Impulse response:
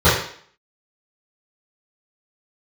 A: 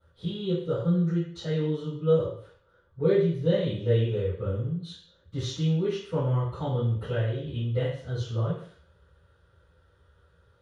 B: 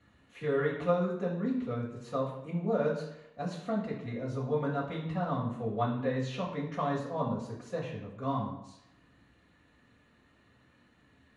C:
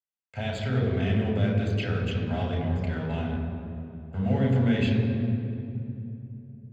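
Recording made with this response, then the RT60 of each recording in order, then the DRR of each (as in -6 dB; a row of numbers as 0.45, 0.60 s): A; 0.55, 0.85, 2.8 s; -16.5, -6.5, -1.0 dB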